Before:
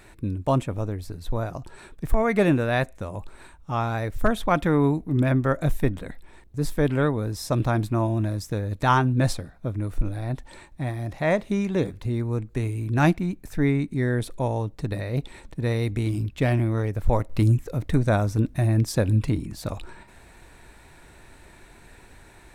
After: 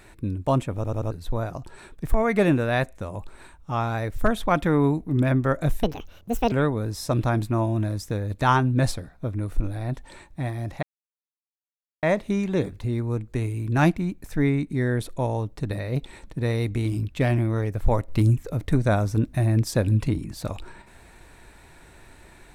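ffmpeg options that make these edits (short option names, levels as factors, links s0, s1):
-filter_complex "[0:a]asplit=8[s0][s1][s2][s3][s4][s5][s6][s7];[s0]atrim=end=0.842[s8];[s1]atrim=start=0.748:end=0.842[s9];[s2]atrim=start=0.748:end=0.842[s10];[s3]atrim=start=0.748:end=0.842[s11];[s4]atrim=start=1.108:end=5.834[s12];[s5]atrim=start=5.83:end=6.93,asetpts=PTS-STARTPTS,asetrate=70560,aresample=44100[s13];[s6]atrim=start=6.926:end=11.24,asetpts=PTS-STARTPTS,afade=t=out:st=4.31:d=0.004:c=hsin,apad=pad_dur=1.2[s14];[s7]atrim=start=11.24,asetpts=PTS-STARTPTS,afade=t=in:d=0.004:c=hsin[s15];[s8][s9]acrossfade=d=0.004:c1=hsin:c2=hsin[s16];[s16][s10]acrossfade=d=0.004:c1=hsin:c2=hsin[s17];[s17][s11]acrossfade=d=0.004:c1=hsin:c2=hsin[s18];[s18][s12]acrossfade=d=0.004:c1=hsin:c2=hsin[s19];[s19][s13]acrossfade=d=0.004:c1=hsin:c2=hsin[s20];[s14][s15]concat=n=2:v=0:a=1[s21];[s20][s21]acrossfade=d=0.004:c1=hsin:c2=hsin"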